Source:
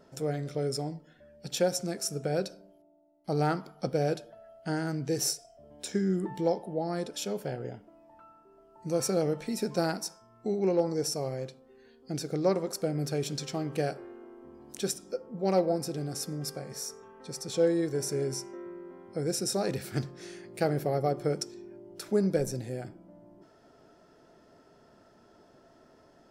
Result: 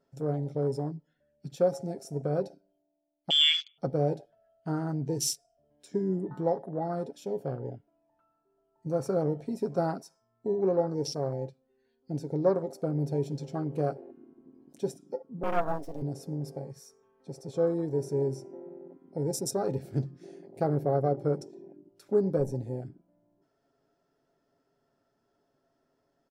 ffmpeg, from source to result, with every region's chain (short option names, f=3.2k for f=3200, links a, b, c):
-filter_complex "[0:a]asettb=1/sr,asplit=3[a][b][c];[a]atrim=end=3.304[d];[b]atrim=start=3.3:end=3.78,asetpts=PTS-STARTPTS,afade=t=in:d=0.004:c=qsin,afade=t=out:st=0.476:d=0.004:c=qsin,lowshelf=f=180:g=7,lowpass=f=3.1k:t=q:w=0.5098,lowpass=f=3.1k:t=q:w=0.6013,lowpass=f=3.1k:t=q:w=0.9,lowpass=f=3.1k:t=q:w=2.563,afreqshift=-3600[e];[c]atrim=start=3.776[f];[d][e]acrossfade=d=0.004:c1=hsin:c2=qsin[g];[g][f]acrossfade=d=0.004:c1=qsin:c2=hsin,asettb=1/sr,asplit=3[h][i][j];[h]atrim=end=15.434[k];[i]atrim=start=15.43:end=16.02,asetpts=PTS-STARTPTS,afade=t=in:d=0.004:c=qsin,afade=t=out:st=0.586:d=0.004:c=qsin,acrusher=bits=5:mode=log:mix=0:aa=0.000001,afreqshift=150,aeval=exprs='max(val(0),0)':c=same[l];[j]atrim=start=16.016[m];[k][l]acrossfade=d=0.004:c1=hsin:c2=qsin[n];[n][m]acrossfade=d=0.004:c1=qsin:c2=hsin,afwtdn=0.0158,aecho=1:1:7.3:0.39"